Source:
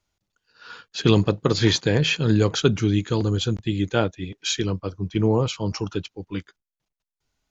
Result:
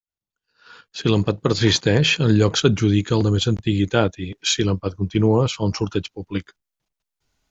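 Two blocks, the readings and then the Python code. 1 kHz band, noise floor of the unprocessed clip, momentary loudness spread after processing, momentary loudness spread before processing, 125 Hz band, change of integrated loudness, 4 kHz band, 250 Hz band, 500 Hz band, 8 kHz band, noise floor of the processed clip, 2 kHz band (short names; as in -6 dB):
+2.5 dB, under -85 dBFS, 10 LU, 11 LU, +3.0 dB, +2.5 dB, +3.5 dB, +3.0 dB, +2.5 dB, n/a, under -85 dBFS, +3.0 dB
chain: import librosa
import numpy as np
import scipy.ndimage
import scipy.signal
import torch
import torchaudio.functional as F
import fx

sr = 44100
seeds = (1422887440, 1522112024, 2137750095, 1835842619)

p1 = fx.fade_in_head(x, sr, length_s=1.91)
p2 = fx.level_steps(p1, sr, step_db=13)
y = p1 + (p2 * librosa.db_to_amplitude(0.0))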